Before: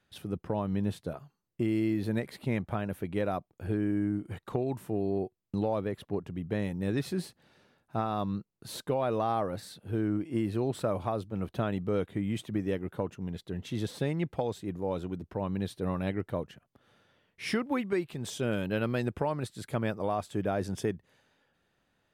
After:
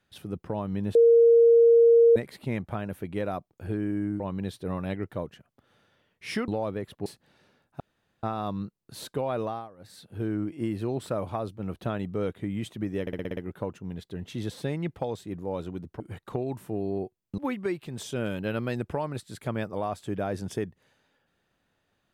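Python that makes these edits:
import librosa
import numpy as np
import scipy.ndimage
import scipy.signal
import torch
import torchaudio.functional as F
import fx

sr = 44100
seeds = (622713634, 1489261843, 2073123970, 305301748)

y = fx.edit(x, sr, fx.bleep(start_s=0.95, length_s=1.21, hz=465.0, db=-13.5),
    fx.swap(start_s=4.2, length_s=1.38, other_s=15.37, other_length_s=2.28),
    fx.cut(start_s=6.16, length_s=1.06),
    fx.insert_room_tone(at_s=7.96, length_s=0.43),
    fx.fade_down_up(start_s=9.14, length_s=0.64, db=-19.5, fade_s=0.28),
    fx.stutter(start_s=12.74, slice_s=0.06, count=7), tone=tone)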